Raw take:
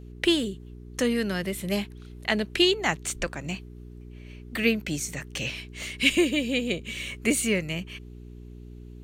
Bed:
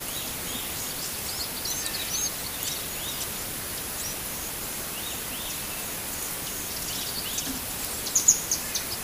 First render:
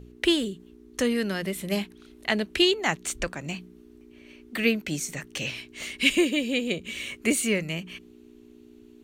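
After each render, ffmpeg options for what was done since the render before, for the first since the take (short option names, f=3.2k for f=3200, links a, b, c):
-af "bandreject=f=60:t=h:w=4,bandreject=f=120:t=h:w=4,bandreject=f=180:t=h:w=4"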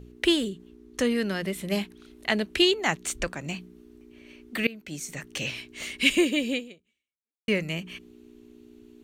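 -filter_complex "[0:a]asettb=1/sr,asplit=3[a][b][c];[a]atrim=end=0.494[d];[b]atrim=start=0.49:end=1.75,asetpts=PTS-STARTPTS,afade=t=in:d=0.004:c=qsin,afade=t=out:st=1.256:d=0.004:c=qsin,highshelf=f=8.5k:g=-5[e];[c]atrim=start=1.746[f];[d][e]acrossfade=d=0.004:c1=hsin:c2=qsin[g];[g][f]acrossfade=d=0.004:c1=qsin:c2=hsin,asplit=3[h][i][j];[h]atrim=end=4.67,asetpts=PTS-STARTPTS,afade=t=out:st=4.666:d=0.004:c=hsin:silence=0.0707946[k];[i]atrim=start=4.67:end=7.48,asetpts=PTS-STARTPTS,afade=t=in:d=0.64:silence=0.0707946,afade=t=out:st=1.86:d=0.95:c=exp[l];[j]atrim=start=7.48,asetpts=PTS-STARTPTS,afade=t=in:d=0.004:c=hsin[m];[k][l][m]concat=n=3:v=0:a=1"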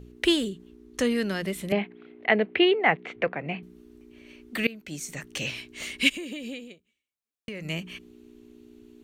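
-filter_complex "[0:a]asettb=1/sr,asplit=3[a][b][c];[a]atrim=end=1.724[d];[b]atrim=start=1.72:end=3.63,asetpts=PTS-STARTPTS,afade=t=in:d=0.004:c=qsin,afade=t=out:st=1.906:d=0.004:c=qsin,highpass=f=110:w=0.5412,highpass=f=110:w=1.3066,equalizer=f=470:t=q:w=4:g=9,equalizer=f=730:t=q:w=4:g=8,equalizer=f=2.1k:t=q:w=4:g=7,lowpass=f=2.8k:w=0.5412,lowpass=f=2.8k:w=1.3066[e];[c]atrim=start=3.626[f];[d][e]acrossfade=d=0.004:c1=hsin:c2=qsin[g];[g][f]acrossfade=d=0.004:c1=qsin:c2=hsin,asplit=3[h][i][j];[h]afade=t=out:st=6.08:d=0.02[k];[i]acompressor=threshold=-32dB:ratio=12:attack=3.2:release=140:knee=1:detection=peak,afade=t=in:st=6.08:d=0.02,afade=t=out:st=7.64:d=0.02[l];[j]afade=t=in:st=7.64:d=0.02[m];[k][l][m]amix=inputs=3:normalize=0"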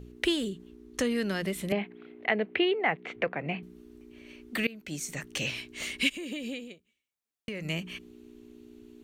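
-af "acompressor=threshold=-27dB:ratio=2"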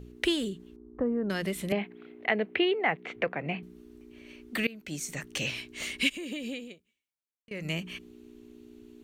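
-filter_complex "[0:a]asettb=1/sr,asplit=3[a][b][c];[a]atrim=end=0.764[d];[b]atrim=start=0.76:end=1.3,asetpts=PTS-STARTPTS,afade=t=in:d=0.004:c=qsin,afade=t=out:st=0.536:d=0.004:c=qsin,lowpass=f=1.1k:w=0.5412,lowpass=f=1.1k:w=1.3066[e];[c]atrim=start=1.296[f];[d][e]acrossfade=d=0.004:c1=hsin:c2=qsin[g];[g][f]acrossfade=d=0.004:c1=qsin:c2=hsin,asplit=2[h][i];[h]atrim=end=7.51,asetpts=PTS-STARTPTS,afade=t=out:st=6.7:d=0.81:silence=0.0630957[j];[i]atrim=start=7.51,asetpts=PTS-STARTPTS,afade=t=in:d=0.004:c=hsin:silence=0.0630957[k];[j][k]concat=n=2:v=0:a=1"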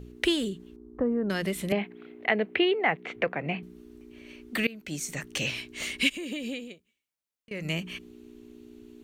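-af "volume=2dB"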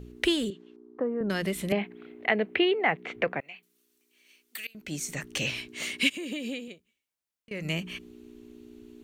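-filter_complex "[0:a]asettb=1/sr,asplit=3[a][b][c];[a]atrim=end=0.504[d];[b]atrim=start=0.5:end=1.21,asetpts=PTS-STARTPTS,afade=t=in:d=0.004:c=qsin,afade=t=out:st=0.706:d=0.004:c=qsin,highpass=310,lowpass=4.5k[e];[c]atrim=start=1.206[f];[d][e]acrossfade=d=0.004:c1=hsin:c2=qsin[g];[g][f]acrossfade=d=0.004:c1=qsin:c2=hsin,asettb=1/sr,asplit=3[h][i][j];[h]atrim=end=3.404[k];[i]atrim=start=3.4:end=4.75,asetpts=PTS-STARTPTS,afade=t=in:d=0.004:c=qsin,afade=t=out:st=1.346:d=0.004:c=qsin,aderivative[l];[j]atrim=start=4.746[m];[k][l]acrossfade=d=0.004:c1=hsin:c2=qsin[n];[n][m]acrossfade=d=0.004:c1=qsin:c2=hsin,asettb=1/sr,asplit=3[o][p][q];[o]atrim=end=5.684[r];[p]atrim=start=5.68:end=6.68,asetpts=PTS-STARTPTS,afade=t=in:d=0.004:c=qsin,afade=t=out:st=0.996:d=0.004:c=qsin,highpass=f=98:w=0.5412,highpass=f=98:w=1.3066[s];[q]atrim=start=6.676[t];[r][s]acrossfade=d=0.004:c1=hsin:c2=qsin[u];[u][t]acrossfade=d=0.004:c1=qsin:c2=hsin"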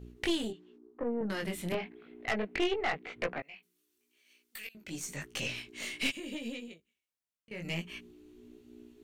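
-af "flanger=delay=17:depth=6.1:speed=0.91,aeval=exprs='(tanh(15.8*val(0)+0.55)-tanh(0.55))/15.8':c=same"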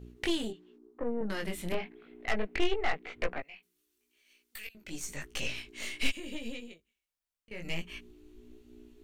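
-af "asubboost=boost=7:cutoff=50"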